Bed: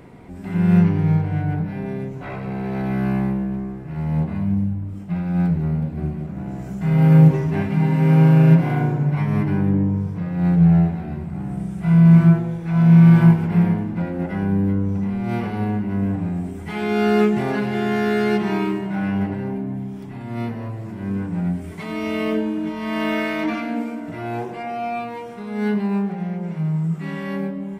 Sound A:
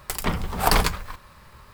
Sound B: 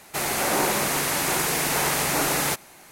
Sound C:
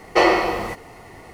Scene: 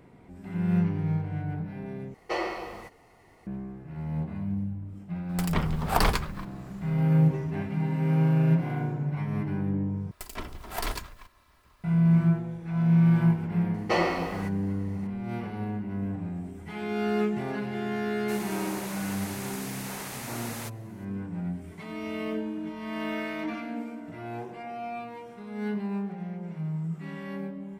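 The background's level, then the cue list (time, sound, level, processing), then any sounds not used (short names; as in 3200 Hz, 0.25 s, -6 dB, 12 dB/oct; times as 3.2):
bed -10 dB
2.14 replace with C -15 dB
5.29 add A -3.5 dB + high shelf 4600 Hz -6 dB
10.11 replace with A -11 dB + minimum comb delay 3 ms
13.74 add C -10 dB
18.14 add B -15 dB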